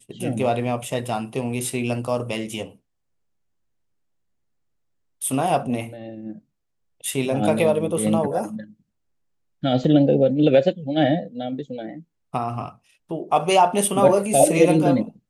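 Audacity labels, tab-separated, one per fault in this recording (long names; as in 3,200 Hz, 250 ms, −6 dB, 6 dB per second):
9.840000	9.840000	drop-out 2.7 ms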